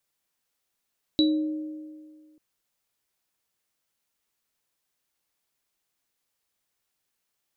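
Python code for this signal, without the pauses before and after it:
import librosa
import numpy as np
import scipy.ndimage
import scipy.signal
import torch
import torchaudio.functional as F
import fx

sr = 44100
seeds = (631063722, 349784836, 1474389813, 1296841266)

y = fx.additive_free(sr, length_s=1.19, hz=308.0, level_db=-17, upper_db=(-16.5, -2.5), decay_s=1.84, upper_decays_s=(1.83, 0.29), upper_hz=(559.0, 3920.0))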